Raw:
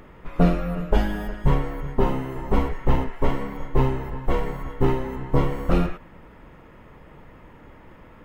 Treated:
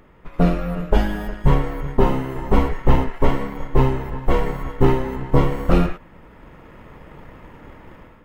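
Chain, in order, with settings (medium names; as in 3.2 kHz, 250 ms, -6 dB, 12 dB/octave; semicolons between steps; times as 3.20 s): level rider gain up to 9 dB; in parallel at -3.5 dB: crossover distortion -32.5 dBFS; on the sum: trim -4.5 dB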